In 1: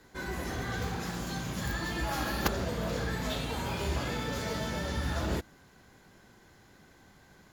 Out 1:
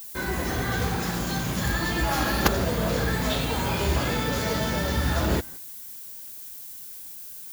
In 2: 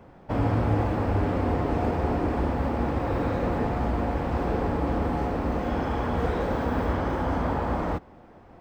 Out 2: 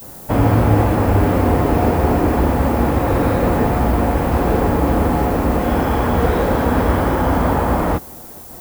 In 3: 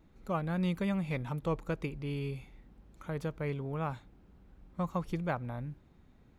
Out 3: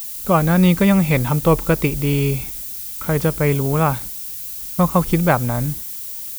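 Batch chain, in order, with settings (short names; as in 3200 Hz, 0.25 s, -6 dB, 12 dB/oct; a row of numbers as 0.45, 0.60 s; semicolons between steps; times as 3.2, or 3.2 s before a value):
gate -51 dBFS, range -13 dB; added noise violet -48 dBFS; normalise peaks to -2 dBFS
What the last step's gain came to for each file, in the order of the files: +7.5, +10.0, +18.0 dB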